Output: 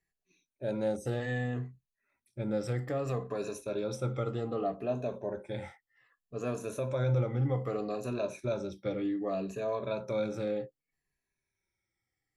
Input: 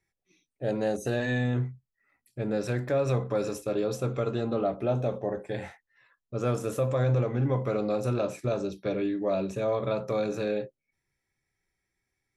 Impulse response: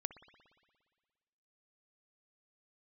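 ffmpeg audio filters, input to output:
-af "afftfilt=real='re*pow(10,11/40*sin(2*PI*(1.5*log(max(b,1)*sr/1024/100)/log(2)-(-0.64)*(pts-256)/sr)))':imag='im*pow(10,11/40*sin(2*PI*(1.5*log(max(b,1)*sr/1024/100)/log(2)-(-0.64)*(pts-256)/sr)))':win_size=1024:overlap=0.75,volume=-6.5dB"

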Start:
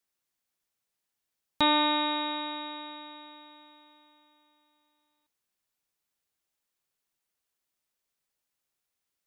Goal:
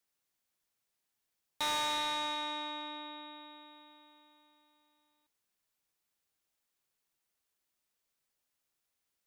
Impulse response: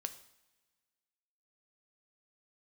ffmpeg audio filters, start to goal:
-filter_complex "[0:a]acrossover=split=520[link_01][link_02];[link_01]acompressor=threshold=-48dB:ratio=6[link_03];[link_03][link_02]amix=inputs=2:normalize=0,asoftclip=type=tanh:threshold=-30.5dB"

